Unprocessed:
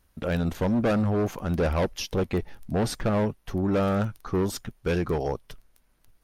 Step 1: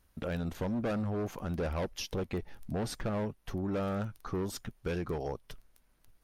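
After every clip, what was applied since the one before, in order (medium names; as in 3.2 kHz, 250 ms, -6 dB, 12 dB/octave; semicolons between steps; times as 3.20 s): compression 2:1, threshold -33 dBFS, peak gain reduction 6.5 dB; trim -3 dB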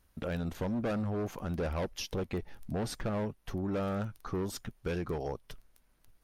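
no audible change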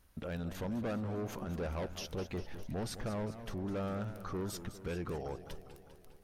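peak limiter -35 dBFS, peak gain reduction 9 dB; modulated delay 201 ms, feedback 62%, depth 194 cents, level -12 dB; trim +2 dB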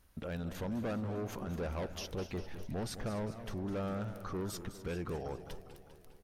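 delay 251 ms -16.5 dB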